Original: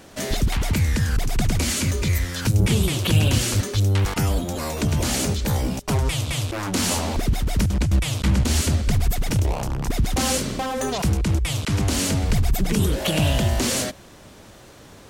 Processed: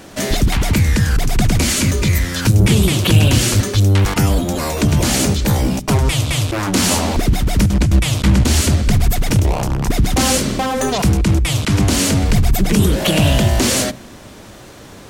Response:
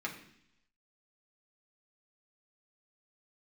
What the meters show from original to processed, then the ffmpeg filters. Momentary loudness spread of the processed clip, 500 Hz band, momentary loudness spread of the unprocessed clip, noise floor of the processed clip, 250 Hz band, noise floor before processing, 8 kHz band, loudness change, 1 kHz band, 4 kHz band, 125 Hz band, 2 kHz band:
5 LU, +7.0 dB, 5 LU, −38 dBFS, +8.0 dB, −46 dBFS, +6.5 dB, +7.0 dB, +7.0 dB, +6.5 dB, +6.5 dB, +7.0 dB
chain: -filter_complex "[0:a]acontrast=67,asplit=2[link_01][link_02];[1:a]atrim=start_sample=2205,lowshelf=frequency=350:gain=11[link_03];[link_02][link_03]afir=irnorm=-1:irlink=0,volume=-19dB[link_04];[link_01][link_04]amix=inputs=2:normalize=0"

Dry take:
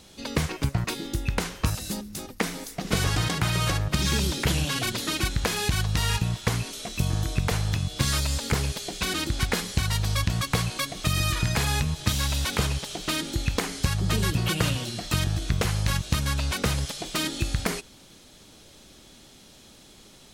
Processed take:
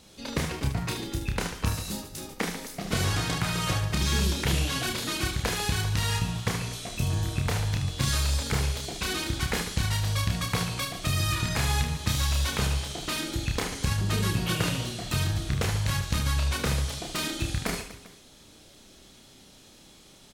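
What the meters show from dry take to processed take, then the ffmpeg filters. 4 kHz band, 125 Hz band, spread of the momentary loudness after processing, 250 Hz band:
−2.0 dB, −1.5 dB, 6 LU, −2.0 dB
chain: -af "aecho=1:1:30|75|142.5|243.8|395.6:0.631|0.398|0.251|0.158|0.1,volume=-4dB"

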